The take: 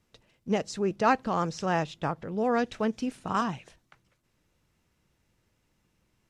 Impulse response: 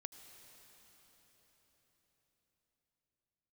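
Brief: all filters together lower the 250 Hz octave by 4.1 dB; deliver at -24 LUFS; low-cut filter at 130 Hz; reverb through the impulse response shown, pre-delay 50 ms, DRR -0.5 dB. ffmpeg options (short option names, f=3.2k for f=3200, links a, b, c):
-filter_complex "[0:a]highpass=130,equalizer=f=250:t=o:g=-4.5,asplit=2[a][b];[1:a]atrim=start_sample=2205,adelay=50[c];[b][c]afir=irnorm=-1:irlink=0,volume=5dB[d];[a][d]amix=inputs=2:normalize=0,volume=3.5dB"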